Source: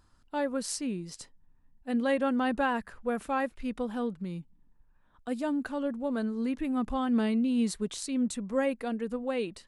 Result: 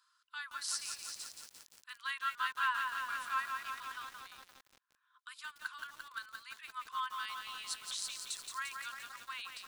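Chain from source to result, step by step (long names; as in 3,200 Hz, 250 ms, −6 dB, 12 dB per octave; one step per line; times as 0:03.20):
Chebyshev high-pass with heavy ripple 1,000 Hz, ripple 6 dB
feedback echo at a low word length 173 ms, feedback 80%, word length 9 bits, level −4.5 dB
level +1.5 dB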